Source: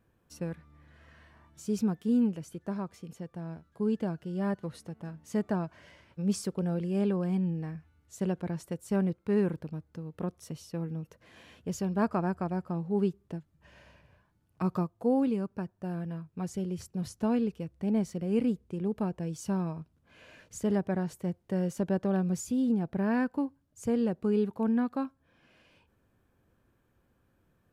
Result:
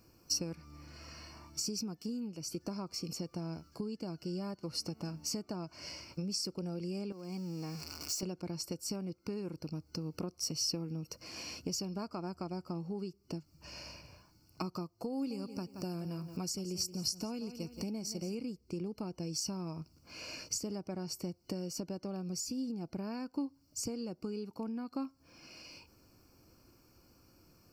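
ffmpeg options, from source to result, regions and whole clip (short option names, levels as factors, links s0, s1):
-filter_complex "[0:a]asettb=1/sr,asplit=3[s0][s1][s2];[s0]atrim=end=7.124[s3];[s1]atrim=start=7.12:end=8.23,asetpts=PTS-STARTPTS,afade=t=in:d=0.004:c=qsin,afade=t=out:st=1.106:d=0.004:c=qsin,aeval=exprs='val(0)+0.5*0.00501*sgn(val(0))':c=same,highpass=f=220:p=1,acompressor=threshold=0.00562:ratio=2:attack=3.2:release=140:knee=1:detection=peak[s4];[s2]atrim=start=8.226[s5];[s3][s4]acrossfade=d=0.004:c1=hsin:c2=qsin[s6];[s6][s5]acrossfade=d=0.004:c1=qsin:c2=hsin,asettb=1/sr,asplit=3[s7][s8][s9];[s7]atrim=end=15.134[s10];[s8]atrim=start=15.13:end=18.35,asetpts=PTS-STARTPTS,afade=t=in:d=0.004:c=qsin,afade=t=out:st=3.216:d=0.004:c=qsin,highshelf=f=6300:g=8.5,acompressor=mode=upward:threshold=0.00501:ratio=2.5:attack=3.2:release=140:knee=2.83:detection=peak,aecho=1:1:175|350|525:0.178|0.0498|0.0139,atrim=end_sample=142002[s11];[s9]atrim=start=18.346[s12];[s10][s11]acrossfade=d=0.004:c1=hsin:c2=qsin[s13];[s13][s12]acrossfade=d=0.004:c1=qsin:c2=hsin,highshelf=f=2600:g=11.5,acompressor=threshold=0.00891:ratio=16,superequalizer=6b=1.78:11b=0.316:13b=0.282:14b=3.55:16b=0.501,volume=1.68"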